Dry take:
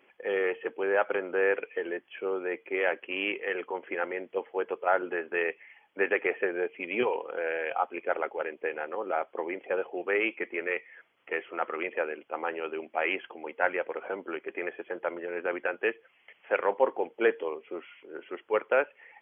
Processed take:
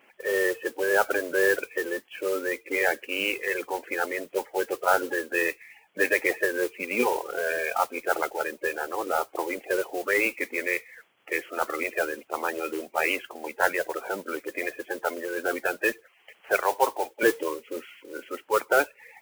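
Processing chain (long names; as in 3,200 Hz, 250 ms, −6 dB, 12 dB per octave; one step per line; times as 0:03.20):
spectral magnitudes quantised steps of 30 dB
0:16.58–0:17.23: high-pass filter 480 Hz 12 dB per octave
noise that follows the level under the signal 15 dB
level +4 dB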